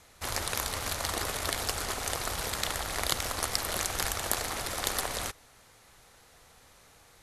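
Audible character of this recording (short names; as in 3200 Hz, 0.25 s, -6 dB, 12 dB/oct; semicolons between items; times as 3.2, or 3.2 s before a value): noise floor -59 dBFS; spectral tilt -2.0 dB/oct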